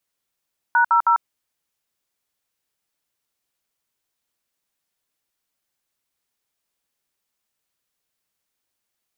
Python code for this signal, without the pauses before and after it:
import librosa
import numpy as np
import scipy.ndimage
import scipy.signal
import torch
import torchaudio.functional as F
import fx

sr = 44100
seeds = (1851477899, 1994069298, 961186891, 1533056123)

y = fx.dtmf(sr, digits='#00', tone_ms=96, gap_ms=62, level_db=-15.5)